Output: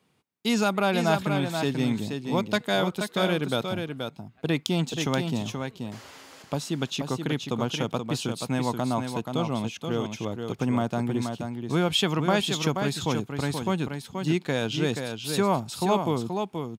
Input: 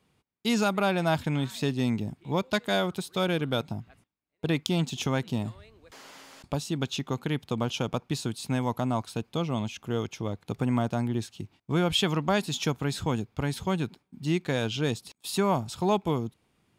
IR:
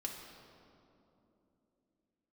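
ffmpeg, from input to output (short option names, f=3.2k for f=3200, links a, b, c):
-af "highpass=120,aecho=1:1:479:0.501,volume=1.5dB"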